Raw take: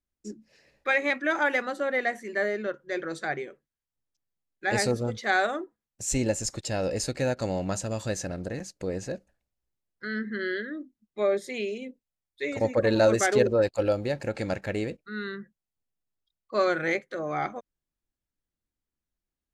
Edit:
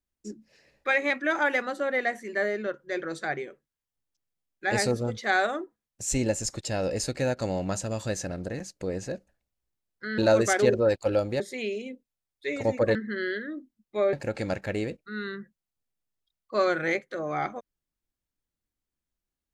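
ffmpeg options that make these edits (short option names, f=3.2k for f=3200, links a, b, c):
-filter_complex "[0:a]asplit=5[a][b][c][d][e];[a]atrim=end=10.182[f];[b]atrim=start=12.908:end=14.132[g];[c]atrim=start=11.358:end=12.912[h];[d]atrim=start=10.178:end=11.362[i];[e]atrim=start=14.128[j];[f][g]acrossfade=d=0.004:c1=hsin:c2=hsin[k];[k][h]acrossfade=d=0.004:c1=hsin:c2=hsin[l];[l][i]acrossfade=d=0.004:c1=hsin:c2=hsin[m];[m][j]acrossfade=d=0.004:c1=hsin:c2=hsin"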